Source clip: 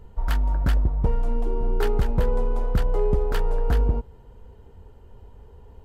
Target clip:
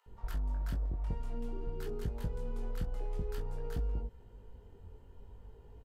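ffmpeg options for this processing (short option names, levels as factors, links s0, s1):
-filter_complex "[0:a]flanger=delay=18.5:depth=4.4:speed=0.51,acrossover=split=340|1500|4100[s0][s1][s2][s3];[s0]acompressor=threshold=0.0316:ratio=4[s4];[s1]acompressor=threshold=0.00447:ratio=4[s5];[s2]acompressor=threshold=0.00141:ratio=4[s6];[s3]acompressor=threshold=0.00224:ratio=4[s7];[s4][s5][s6][s7]amix=inputs=4:normalize=0,acrossover=split=860[s8][s9];[s8]adelay=60[s10];[s10][s9]amix=inputs=2:normalize=0,volume=0.668"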